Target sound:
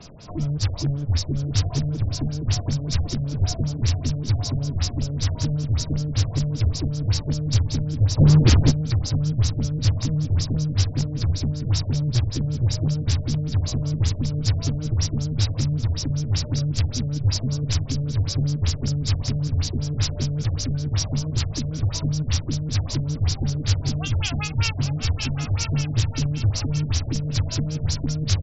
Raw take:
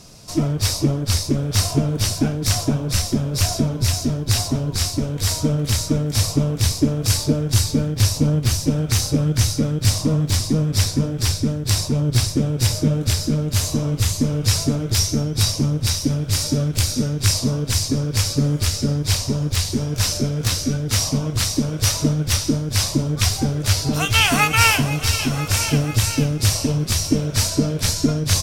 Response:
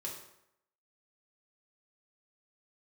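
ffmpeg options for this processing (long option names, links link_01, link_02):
-filter_complex "[0:a]aecho=1:1:1107|2214|3321|4428:0.282|0.0958|0.0326|0.0111,acrossover=split=140|3900[link_01][link_02][link_03];[link_02]acompressor=threshold=-36dB:ratio=5[link_04];[link_01][link_04][link_03]amix=inputs=3:normalize=0,asplit=3[link_05][link_06][link_07];[link_05]afade=type=out:start_time=8.17:duration=0.02[link_08];[link_06]aeval=exprs='0.376*sin(PI/2*2.82*val(0)/0.376)':channel_layout=same,afade=type=in:start_time=8.17:duration=0.02,afade=type=out:start_time=8.7:duration=0.02[link_09];[link_07]afade=type=in:start_time=8.7:duration=0.02[link_10];[link_08][link_09][link_10]amix=inputs=3:normalize=0,acrossover=split=5200[link_11][link_12];[link_12]acompressor=threshold=-27dB:ratio=4:attack=1:release=60[link_13];[link_11][link_13]amix=inputs=2:normalize=0,asplit=2[link_14][link_15];[link_15]aeval=exprs='(mod(6.68*val(0)+1,2)-1)/6.68':channel_layout=same,volume=-11.5dB[link_16];[link_14][link_16]amix=inputs=2:normalize=0,afftfilt=real='re*lt(b*sr/1024,690*pow(7800/690,0.5+0.5*sin(2*PI*5.2*pts/sr)))':imag='im*lt(b*sr/1024,690*pow(7800/690,0.5+0.5*sin(2*PI*5.2*pts/sr)))':win_size=1024:overlap=0.75"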